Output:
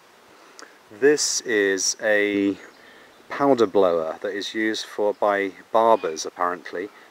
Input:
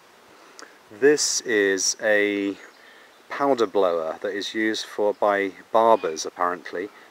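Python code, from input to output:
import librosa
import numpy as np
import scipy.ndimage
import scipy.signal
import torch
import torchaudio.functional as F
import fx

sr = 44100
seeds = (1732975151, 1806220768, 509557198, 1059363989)

y = fx.low_shelf(x, sr, hz=290.0, db=9.5, at=(2.34, 4.04))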